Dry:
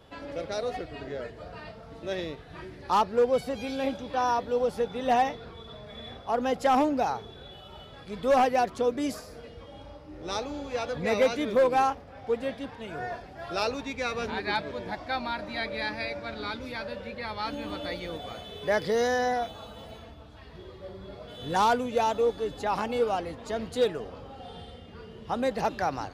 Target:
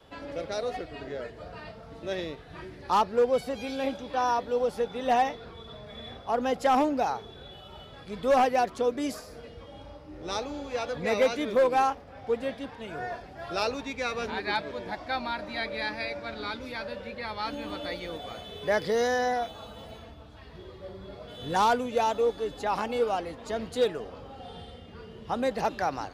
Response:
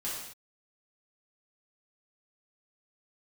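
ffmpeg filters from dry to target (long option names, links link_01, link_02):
-af "adynamicequalizer=threshold=0.00501:dfrequency=110:dqfactor=0.73:tfrequency=110:tqfactor=0.73:attack=5:release=100:ratio=0.375:range=2.5:mode=cutabove:tftype=bell"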